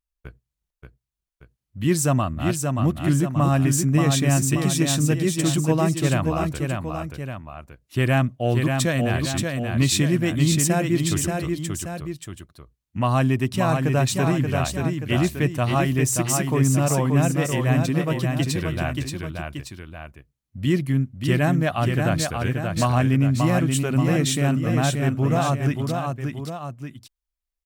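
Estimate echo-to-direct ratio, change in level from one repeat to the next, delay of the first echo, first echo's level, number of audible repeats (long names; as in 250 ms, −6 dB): −3.5 dB, −5.5 dB, 580 ms, −4.5 dB, 2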